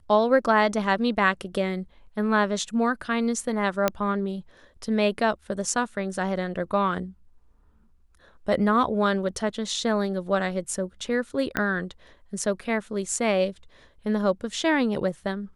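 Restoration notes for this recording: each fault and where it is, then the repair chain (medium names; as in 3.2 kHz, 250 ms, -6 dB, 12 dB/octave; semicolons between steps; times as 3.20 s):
3.88 s: pop -7 dBFS
11.57 s: pop -11 dBFS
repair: de-click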